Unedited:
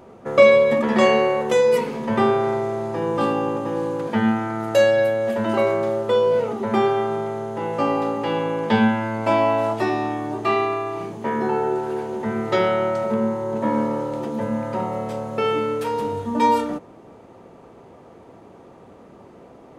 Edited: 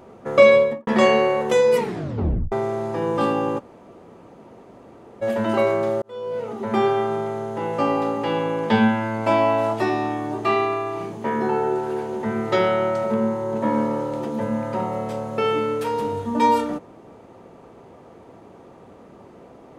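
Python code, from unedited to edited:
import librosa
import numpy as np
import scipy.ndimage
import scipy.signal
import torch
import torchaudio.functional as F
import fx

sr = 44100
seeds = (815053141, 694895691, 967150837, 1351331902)

y = fx.studio_fade_out(x, sr, start_s=0.55, length_s=0.32)
y = fx.edit(y, sr, fx.tape_stop(start_s=1.79, length_s=0.73),
    fx.room_tone_fill(start_s=3.59, length_s=1.63, crossfade_s=0.02),
    fx.fade_in_span(start_s=6.02, length_s=0.86), tone=tone)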